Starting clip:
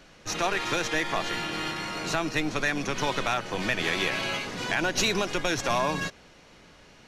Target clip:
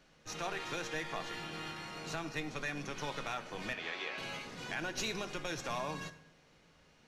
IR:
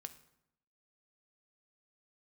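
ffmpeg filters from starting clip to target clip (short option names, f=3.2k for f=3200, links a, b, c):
-filter_complex "[0:a]asettb=1/sr,asplit=3[a][b][c];[a]atrim=end=3.734[d];[b]atrim=start=3.73:end=4.18,asetpts=PTS-STARTPTS,afade=t=in:d=0.004:c=qsin,afade=t=out:st=0.446:d=0.004:c=qsin,highpass=400,lowpass=4.4k[e];[c]atrim=start=4.176[f];[d][e]acrossfade=d=0.004:c1=hsin:c2=qsin[g];[g][f]acrossfade=d=0.004:c1=qsin:c2=hsin[h];[1:a]atrim=start_sample=2205[i];[h][i]afir=irnorm=-1:irlink=0,volume=-7dB"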